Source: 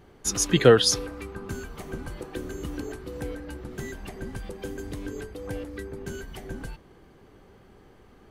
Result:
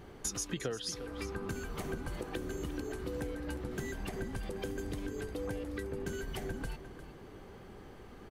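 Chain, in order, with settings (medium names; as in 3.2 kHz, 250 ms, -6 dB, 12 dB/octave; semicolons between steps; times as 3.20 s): compression 12:1, threshold -37 dBFS, peak gain reduction 27 dB; on a send: delay 353 ms -13 dB; on the sum: trim +2.5 dB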